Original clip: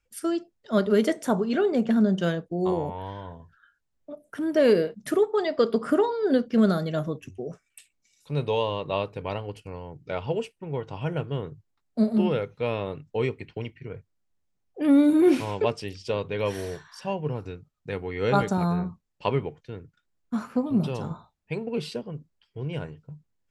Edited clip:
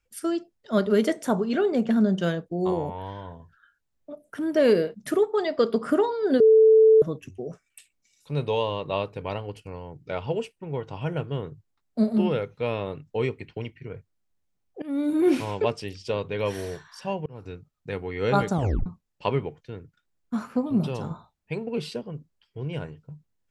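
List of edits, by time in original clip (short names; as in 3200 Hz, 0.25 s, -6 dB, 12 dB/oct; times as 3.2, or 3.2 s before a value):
6.4–7.02 bleep 440 Hz -11.5 dBFS
14.82–15.38 fade in, from -20.5 dB
17.26–17.54 fade in
18.53 tape stop 0.33 s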